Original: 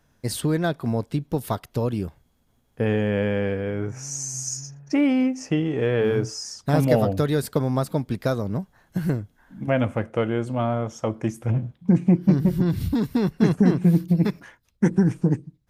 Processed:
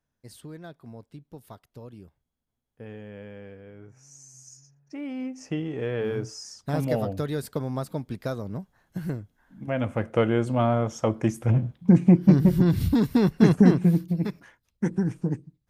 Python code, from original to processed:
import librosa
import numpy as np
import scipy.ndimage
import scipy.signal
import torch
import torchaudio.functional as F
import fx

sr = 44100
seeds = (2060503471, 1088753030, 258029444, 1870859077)

y = fx.gain(x, sr, db=fx.line((4.83, -19.0), (5.49, -7.0), (9.7, -7.0), (10.16, 1.5), (13.67, 1.5), (14.11, -6.5)))